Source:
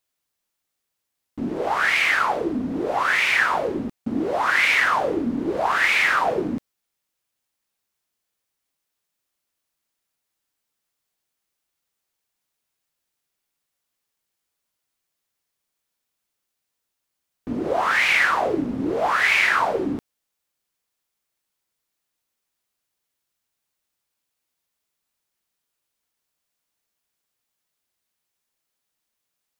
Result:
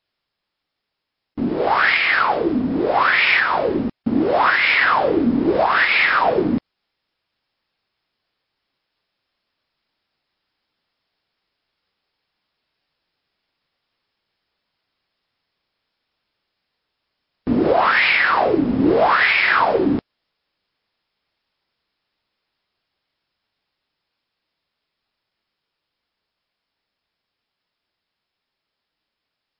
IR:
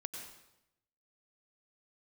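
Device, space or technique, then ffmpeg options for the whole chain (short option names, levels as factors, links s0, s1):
low-bitrate web radio: -af "dynaudnorm=f=380:g=31:m=1.78,alimiter=limit=0.251:level=0:latency=1:release=323,volume=2" -ar 12000 -c:a libmp3lame -b:a 24k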